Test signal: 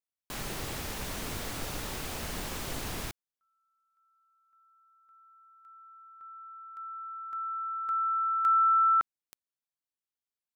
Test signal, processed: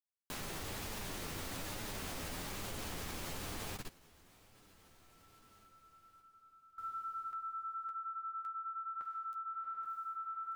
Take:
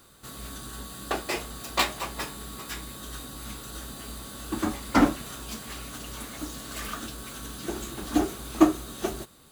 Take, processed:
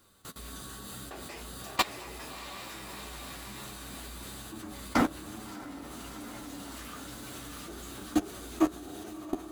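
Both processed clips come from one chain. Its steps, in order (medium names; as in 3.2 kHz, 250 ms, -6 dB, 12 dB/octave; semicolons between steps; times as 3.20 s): echo that smears into a reverb 685 ms, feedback 50%, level -4 dB; level held to a coarse grid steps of 21 dB; flange 1.1 Hz, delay 9.1 ms, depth 3.3 ms, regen -23%; trim +3 dB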